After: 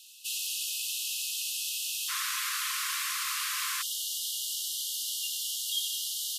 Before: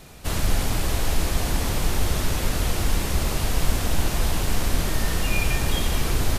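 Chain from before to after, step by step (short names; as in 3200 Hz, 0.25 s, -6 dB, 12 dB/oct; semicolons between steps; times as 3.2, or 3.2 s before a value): brick-wall FIR high-pass 2500 Hz, from 2.08 s 1000 Hz, from 3.81 s 2800 Hz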